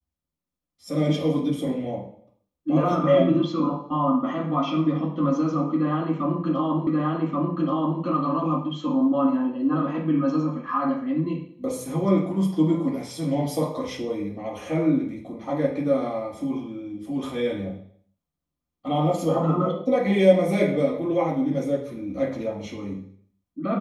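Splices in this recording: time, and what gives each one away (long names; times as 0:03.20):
0:06.87: the same again, the last 1.13 s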